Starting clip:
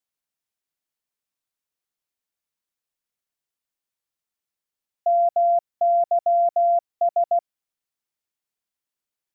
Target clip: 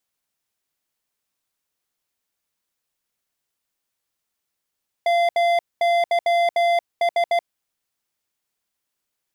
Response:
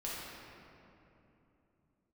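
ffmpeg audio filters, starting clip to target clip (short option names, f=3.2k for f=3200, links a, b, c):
-af "asoftclip=type=hard:threshold=-25dB,volume=7.5dB"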